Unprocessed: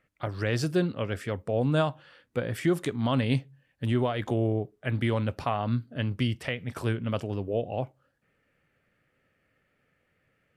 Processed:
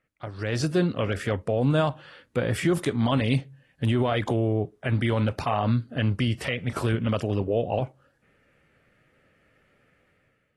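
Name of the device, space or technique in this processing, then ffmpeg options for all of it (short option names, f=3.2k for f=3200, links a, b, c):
low-bitrate web radio: -af "dynaudnorm=f=260:g=5:m=11dB,alimiter=limit=-10dB:level=0:latency=1:release=39,volume=-4.5dB" -ar 32000 -c:a aac -b:a 32k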